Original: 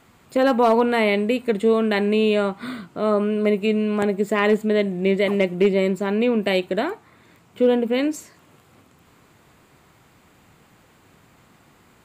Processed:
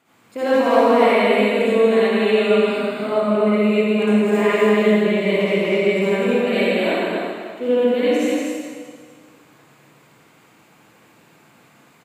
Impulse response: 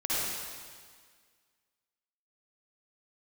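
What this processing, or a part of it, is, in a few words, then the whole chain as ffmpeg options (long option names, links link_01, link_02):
stadium PA: -filter_complex "[0:a]highpass=150,equalizer=frequency=2500:width_type=o:width=0.37:gain=3,aecho=1:1:160.3|244.9:0.355|0.631[link_01];[1:a]atrim=start_sample=2205[link_02];[link_01][link_02]afir=irnorm=-1:irlink=0,volume=-8dB"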